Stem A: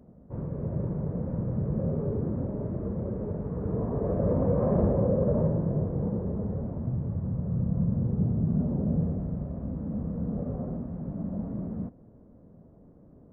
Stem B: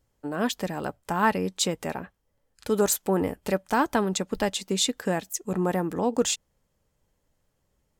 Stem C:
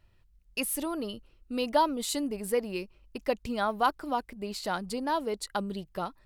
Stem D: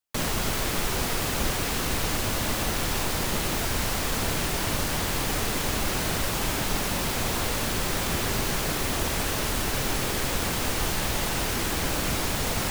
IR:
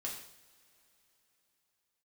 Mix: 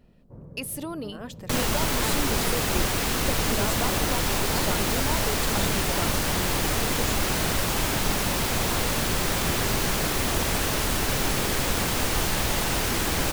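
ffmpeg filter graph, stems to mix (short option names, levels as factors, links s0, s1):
-filter_complex "[0:a]acompressor=threshold=0.0224:ratio=6,volume=0.447[s0];[1:a]adelay=800,volume=0.224,asplit=2[s1][s2];[s2]volume=0.075[s3];[2:a]acompressor=threshold=0.0251:ratio=6,volume=1.26[s4];[3:a]adelay=1350,volume=1.26[s5];[4:a]atrim=start_sample=2205[s6];[s3][s6]afir=irnorm=-1:irlink=0[s7];[s0][s1][s4][s5][s7]amix=inputs=5:normalize=0"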